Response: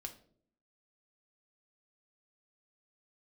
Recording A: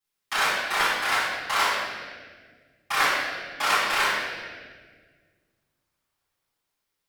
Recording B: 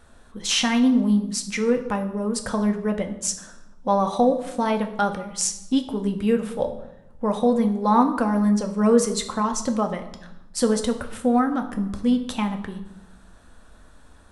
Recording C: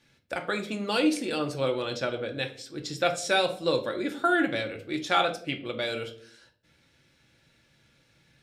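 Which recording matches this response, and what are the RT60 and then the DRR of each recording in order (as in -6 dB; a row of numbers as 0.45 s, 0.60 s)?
C; 1.7 s, 0.90 s, no single decay rate; -14.5 dB, 5.0 dB, 3.5 dB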